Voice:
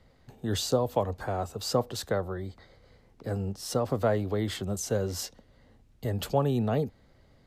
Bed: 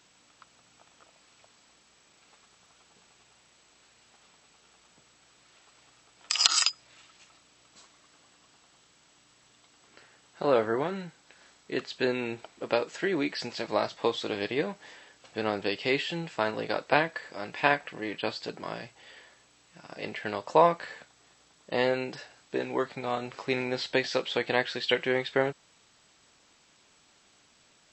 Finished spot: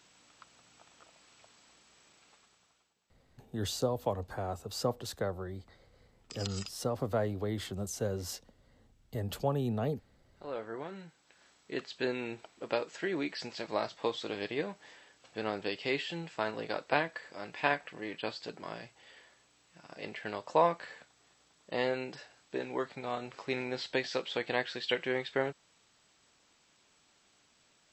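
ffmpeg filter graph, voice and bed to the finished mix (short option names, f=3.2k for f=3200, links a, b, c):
-filter_complex "[0:a]adelay=3100,volume=-5.5dB[a];[1:a]volume=13.5dB,afade=t=out:st=2.07:d=0.88:silence=0.112202,afade=t=in:st=10.34:d=1.29:silence=0.188365[b];[a][b]amix=inputs=2:normalize=0"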